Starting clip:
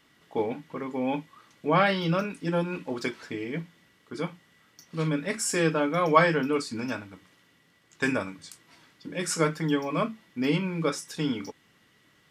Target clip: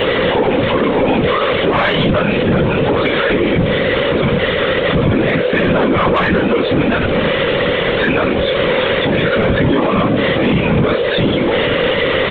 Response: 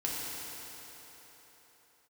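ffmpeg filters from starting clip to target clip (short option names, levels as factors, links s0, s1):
-filter_complex "[0:a]aeval=exprs='val(0)+0.5*0.0531*sgn(val(0))':c=same,aeval=exprs='val(0)+0.0251*sin(2*PI*500*n/s)':c=same,aresample=8000,asoftclip=type=hard:threshold=0.119,aresample=44100,acontrast=67,asplit=2[s0][s1];[s1]adelay=18,volume=0.708[s2];[s0][s2]amix=inputs=2:normalize=0,afftfilt=real='hypot(re,im)*cos(2*PI*random(0))':imag='hypot(re,im)*sin(2*PI*random(1))':win_size=512:overlap=0.75,alimiter=level_in=7.94:limit=0.891:release=50:level=0:latency=1,volume=0.596"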